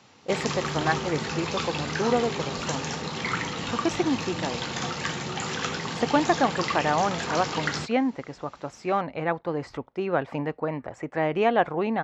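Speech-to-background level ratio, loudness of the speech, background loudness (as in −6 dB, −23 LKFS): 2.5 dB, −28.0 LKFS, −30.5 LKFS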